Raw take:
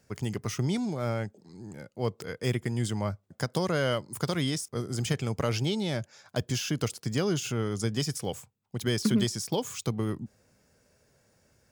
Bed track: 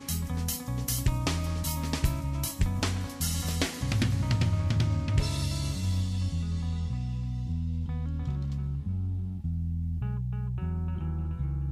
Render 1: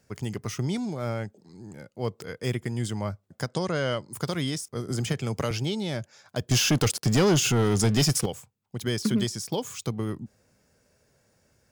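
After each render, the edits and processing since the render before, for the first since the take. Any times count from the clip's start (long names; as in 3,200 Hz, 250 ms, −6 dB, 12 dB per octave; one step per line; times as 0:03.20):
0:03.49–0:04.11: Butterworth low-pass 9,200 Hz 96 dB per octave
0:04.88–0:05.51: multiband upward and downward compressor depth 70%
0:06.51–0:08.26: leveller curve on the samples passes 3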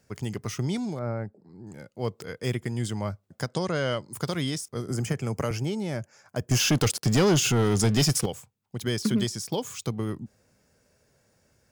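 0:00.99–0:01.67: moving average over 14 samples
0:04.90–0:06.60: parametric band 3,700 Hz −14.5 dB 0.51 octaves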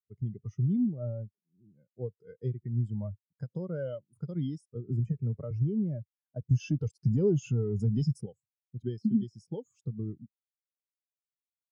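downward compressor 8 to 1, threshold −27 dBFS, peak gain reduction 9 dB
every bin expanded away from the loudest bin 2.5 to 1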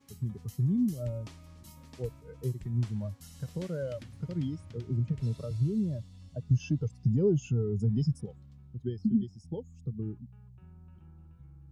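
mix in bed track −21 dB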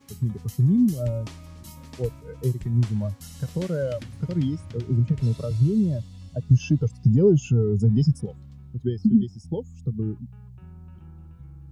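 level +8.5 dB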